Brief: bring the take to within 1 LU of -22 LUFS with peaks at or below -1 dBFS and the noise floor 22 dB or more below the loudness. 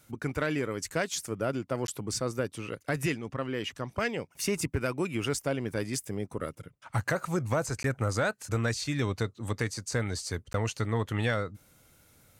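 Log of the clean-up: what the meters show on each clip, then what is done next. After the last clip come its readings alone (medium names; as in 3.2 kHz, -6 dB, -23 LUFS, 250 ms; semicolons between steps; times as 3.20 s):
dropouts 3; longest dropout 12 ms; loudness -32.0 LUFS; peak level -15.5 dBFS; loudness target -22.0 LUFS
-> interpolate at 1.87/7.83/10.53 s, 12 ms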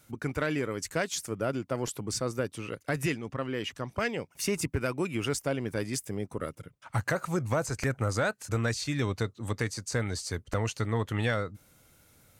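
dropouts 0; loudness -32.0 LUFS; peak level -15.5 dBFS; loudness target -22.0 LUFS
-> trim +10 dB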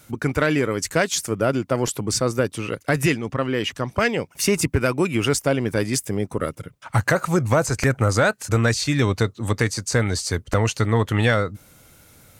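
loudness -22.0 LUFS; peak level -5.5 dBFS; noise floor -53 dBFS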